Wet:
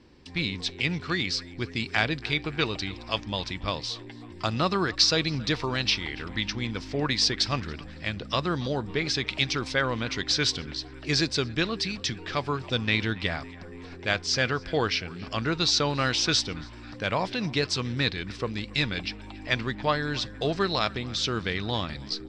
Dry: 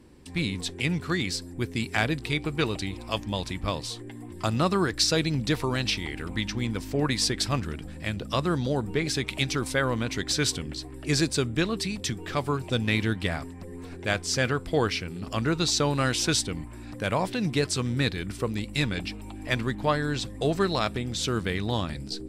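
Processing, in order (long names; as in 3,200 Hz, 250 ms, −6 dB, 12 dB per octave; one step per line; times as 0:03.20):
drawn EQ curve 260 Hz 0 dB, 5,300 Hz +7 dB, 12,000 Hz −25 dB
feedback echo with a band-pass in the loop 279 ms, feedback 61%, band-pass 1,500 Hz, level −19.5 dB
level −3 dB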